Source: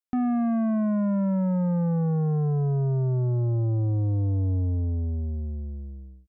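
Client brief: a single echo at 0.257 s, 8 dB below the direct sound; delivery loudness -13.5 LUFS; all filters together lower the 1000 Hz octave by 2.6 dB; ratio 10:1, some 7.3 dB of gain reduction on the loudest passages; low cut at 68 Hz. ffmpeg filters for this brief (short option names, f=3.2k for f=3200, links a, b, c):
-af "highpass=68,equalizer=f=1k:t=o:g=-4,acompressor=threshold=-29dB:ratio=10,aecho=1:1:257:0.398,volume=19dB"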